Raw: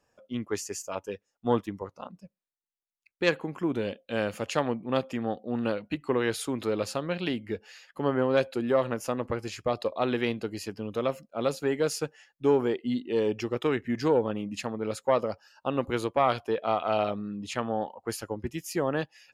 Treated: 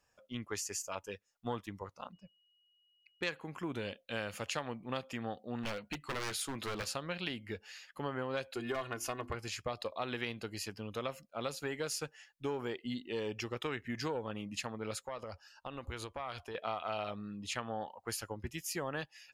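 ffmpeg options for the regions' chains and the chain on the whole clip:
ffmpeg -i in.wav -filter_complex "[0:a]asettb=1/sr,asplit=3[link_01][link_02][link_03];[link_01]atrim=end=2.134[link_04];[link_02]atrim=start=2.13:end=3.24,asetpts=PTS-STARTPTS,afade=type=in:duration=0.004:curve=qsin,afade=type=out:start_time=1.106:duration=0.004:curve=qsin,adynamicsmooth=sensitivity=6.5:basefreq=4500,aeval=exprs='val(0)+0.000316*sin(2*PI*2900*n/s)':channel_layout=same[link_05];[link_03]atrim=start=3.236[link_06];[link_04][link_05]acrossfade=duration=0.004:curve1=hsin:curve2=qsin[link_07];[link_07][link_06]acrossfade=duration=0.004:curve1=qsin:curve2=hsin,asettb=1/sr,asplit=3[link_08][link_09][link_10];[link_08]atrim=end=5.634[link_11];[link_09]atrim=start=5.63:end=6.89,asetpts=PTS-STARTPTS,afade=type=in:duration=0.004:curve=qsin,afade=type=out:start_time=1.256:duration=0.004:curve=qsin,asplit=2[link_12][link_13];[link_13]adelay=14,volume=-11dB[link_14];[link_12][link_14]amix=inputs=2:normalize=0,atrim=end_sample=55566,aeval=exprs='0.0562*(abs(mod(val(0)/0.0562+3,4)-2)-1)':channel_layout=same[link_15];[link_10]atrim=start=6.886[link_16];[link_11][link_15]acrossfade=duration=0.004:curve1=hsin:curve2=qsin[link_17];[link_17][link_16]acrossfade=duration=0.004:curve1=qsin:curve2=hsin,asettb=1/sr,asplit=3[link_18][link_19][link_20];[link_18]atrim=end=8.544[link_21];[link_19]atrim=start=8.54:end=9.35,asetpts=PTS-STARTPTS,afade=type=in:duration=0.004:curve=qsin,afade=type=out:start_time=0.806:duration=0.004:curve=qsin,volume=17.5dB,asoftclip=hard,volume=-17.5dB,bandreject=frequency=50:width_type=h:width=6,bandreject=frequency=100:width_type=h:width=6,bandreject=frequency=150:width_type=h:width=6,bandreject=frequency=200:width_type=h:width=6,bandreject=frequency=250:width_type=h:width=6,bandreject=frequency=300:width_type=h:width=6,bandreject=frequency=350:width_type=h:width=6,aecho=1:1:2.8:0.65,atrim=end_sample=35721[link_22];[link_20]atrim=start=9.346[link_23];[link_21][link_22]acrossfade=duration=0.004:curve1=hsin:curve2=qsin[link_24];[link_24][link_23]acrossfade=duration=0.004:curve1=qsin:curve2=hsin,asettb=1/sr,asplit=3[link_25][link_26][link_27];[link_25]atrim=end=15.054[link_28];[link_26]atrim=start=15.05:end=16.55,asetpts=PTS-STARTPTS,afade=type=in:duration=0.004:curve=qsin,afade=type=out:start_time=1.496:duration=0.004:curve=qsin,lowpass=12000,lowshelf=frequency=100:width_type=q:width=1.5:gain=8,acompressor=threshold=-33dB:ratio=4:attack=3.2:release=140:knee=1:detection=peak[link_29];[link_27]atrim=start=16.546[link_30];[link_28][link_29]acrossfade=duration=0.004:curve1=hsin:curve2=qsin[link_31];[link_31][link_30]acrossfade=duration=0.004:curve1=qsin:curve2=hsin,equalizer=frequency=320:width_type=o:width=2.8:gain=-10,acompressor=threshold=-34dB:ratio=4" out.wav

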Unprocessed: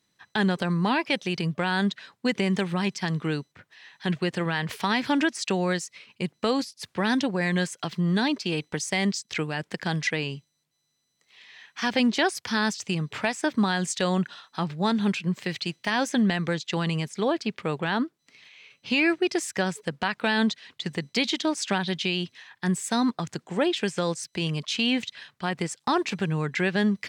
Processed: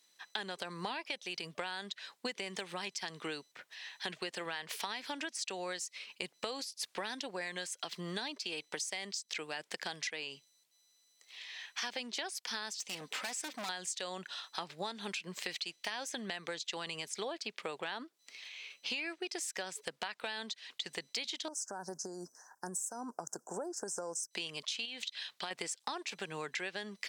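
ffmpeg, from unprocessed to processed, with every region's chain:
ffmpeg -i in.wav -filter_complex "[0:a]asettb=1/sr,asplit=3[link_01][link_02][link_03];[link_01]atrim=end=12.764[link_04];[link_02]atrim=start=12.76:end=13.69,asetpts=PTS-STARTPTS,afade=type=in:duration=0.004:curve=qsin,afade=type=out:start_time=0.926:duration=0.004:curve=qsin,aecho=1:1:3.9:0.45,atrim=end_sample=41013,asoftclip=type=hard:threshold=-29dB[link_05];[link_03]atrim=start=13.686[link_06];[link_04][link_05]acrossfade=duration=0.004:curve1=hsin:curve2=qsin[link_07];[link_07][link_06]acrossfade=duration=0.004:curve1=qsin:curve2=hsin,asettb=1/sr,asplit=3[link_08][link_09][link_10];[link_08]atrim=end=21.484[link_11];[link_09]atrim=start=21.48:end=24.31,asetpts=PTS-STARTPTS,afade=type=in:duration=0.004:curve=qsin,afade=type=out:start_time=2.826:duration=0.004:curve=qsin,equalizer=frequency=1200:width=5.9:gain=-8,acompressor=threshold=-27dB:ratio=6:attack=3.2:release=140:knee=1:detection=peak,asuperstop=centerf=2900:order=12:qfactor=0.72[link_12];[link_10]atrim=start=24.306[link_13];[link_11][link_12]acrossfade=duration=0.004:curve1=hsin:curve2=qsin[link_14];[link_14][link_13]acrossfade=duration=0.004:curve1=qsin:curve2=hsin,asettb=1/sr,asplit=3[link_15][link_16][link_17];[link_15]atrim=end=24.854[link_18];[link_16]atrim=start=24.85:end=25.51,asetpts=PTS-STARTPTS,afade=type=in:duration=0.004:curve=qsin,afade=type=out:start_time=0.656:duration=0.004:curve=qsin,equalizer=frequency=3800:width_type=o:width=0.88:gain=6,acompressor=threshold=-28dB:ratio=6:attack=3.2:release=140:knee=1:detection=peak[link_19];[link_17]atrim=start=25.506[link_20];[link_18][link_19]acrossfade=duration=0.004:curve1=hsin:curve2=qsin[link_21];[link_21][link_20]acrossfade=duration=0.004:curve1=qsin:curve2=hsin,highpass=670,equalizer=frequency=1300:width_type=o:width=2.2:gain=-8,acompressor=threshold=-43dB:ratio=10,volume=7dB" out.wav

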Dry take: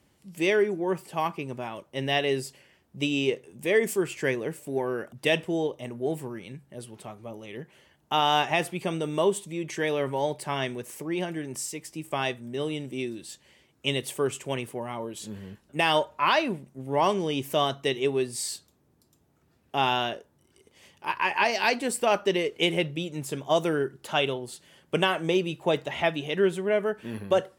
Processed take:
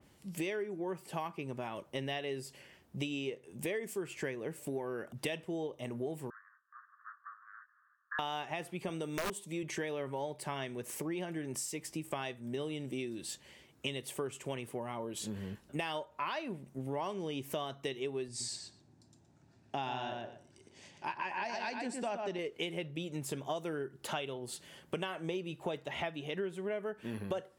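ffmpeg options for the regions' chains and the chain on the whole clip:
ffmpeg -i in.wav -filter_complex "[0:a]asettb=1/sr,asplit=3[link_01][link_02][link_03];[link_01]atrim=end=6.304[link_04];[link_02]atrim=start=6.3:end=8.19,asetpts=PTS-STARTPTS,afade=type=in:duration=0.004:curve=qsin,afade=type=out:start_time=1.886:duration=0.004:curve=qsin,acompressor=mode=upward:threshold=-53dB:ratio=2.5:attack=3.2:release=140:knee=2.83:detection=peak,aeval=exprs='abs(val(0))':channel_layout=same,asuperpass=centerf=1400:order=12:qfactor=2.1[link_05];[link_03]atrim=start=8.186[link_06];[link_04][link_05]acrossfade=duration=0.004:curve1=hsin:curve2=qsin[link_07];[link_07][link_06]acrossfade=duration=0.004:curve1=qsin:curve2=hsin,asettb=1/sr,asplit=3[link_08][link_09][link_10];[link_08]atrim=end=8.894[link_11];[link_09]atrim=start=8.89:end=9.63,asetpts=PTS-STARTPTS,afade=type=in:duration=0.004:curve=qsin,afade=type=out:start_time=0.736:duration=0.004:curve=qsin,highpass=130,highshelf=frequency=4800:gain=5,aeval=exprs='(mod(6.68*val(0)+1,2)-1)/6.68':channel_layout=same[link_12];[link_10]atrim=start=9.626[link_13];[link_11][link_12]acrossfade=duration=0.004:curve1=hsin:curve2=qsin[link_14];[link_14][link_13]acrossfade=duration=0.004:curve1=qsin:curve2=hsin,asettb=1/sr,asplit=3[link_15][link_16][link_17];[link_15]atrim=end=18.284[link_18];[link_16]atrim=start=18.28:end=22.39,asetpts=PTS-STARTPTS,afade=type=in:duration=0.004:curve=qsin,afade=type=out:start_time=4.106:duration=0.004:curve=qsin,highpass=100,equalizer=frequency=110:width_type=q:width=4:gain=5,equalizer=frequency=460:width_type=q:width=4:gain=-9,equalizer=frequency=1200:width_type=q:width=4:gain=-8,equalizer=frequency=2100:width_type=q:width=4:gain=-4,equalizer=frequency=3100:width_type=q:width=4:gain=-6,lowpass=frequency=8000:width=0.5412,lowpass=frequency=8000:width=1.3066,asplit=2[link_19][link_20];[link_20]adelay=119,lowpass=frequency=3100:poles=1,volume=-4.5dB,asplit=2[link_21][link_22];[link_22]adelay=119,lowpass=frequency=3100:poles=1,volume=0.16,asplit=2[link_23][link_24];[link_24]adelay=119,lowpass=frequency=3100:poles=1,volume=0.16[link_25];[link_19][link_21][link_23][link_25]amix=inputs=4:normalize=0,atrim=end_sample=181251[link_26];[link_17]atrim=start=22.386[link_27];[link_18][link_26]acrossfade=duration=0.004:curve1=hsin:curve2=qsin[link_28];[link_28][link_27]acrossfade=duration=0.004:curve1=qsin:curve2=hsin,acompressor=threshold=-37dB:ratio=6,adynamicequalizer=threshold=0.00282:dfrequency=2600:dqfactor=0.7:tfrequency=2600:tqfactor=0.7:attack=5:release=100:ratio=0.375:range=2:mode=cutabove:tftype=highshelf,volume=1.5dB" out.wav

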